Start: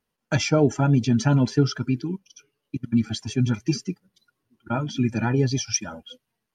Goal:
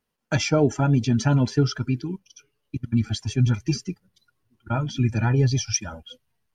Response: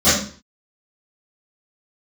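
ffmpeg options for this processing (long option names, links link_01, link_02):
-af "asubboost=boost=5.5:cutoff=96"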